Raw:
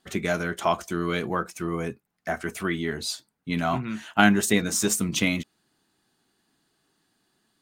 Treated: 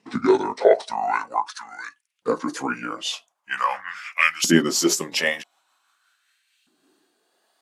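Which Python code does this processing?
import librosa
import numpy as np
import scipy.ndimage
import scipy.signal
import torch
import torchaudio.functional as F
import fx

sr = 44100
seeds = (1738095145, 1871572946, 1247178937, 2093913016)

y = fx.pitch_glide(x, sr, semitones=-9.0, runs='ending unshifted')
y = fx.filter_lfo_highpass(y, sr, shape='saw_up', hz=0.45, low_hz=240.0, high_hz=2700.0, q=3.1)
y = F.gain(torch.from_numpy(y), 4.0).numpy()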